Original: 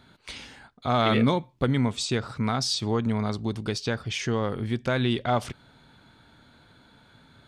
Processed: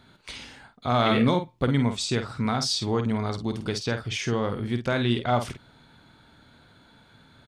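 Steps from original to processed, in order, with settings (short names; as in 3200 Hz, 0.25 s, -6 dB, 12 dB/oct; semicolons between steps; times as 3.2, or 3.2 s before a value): doubler 50 ms -8 dB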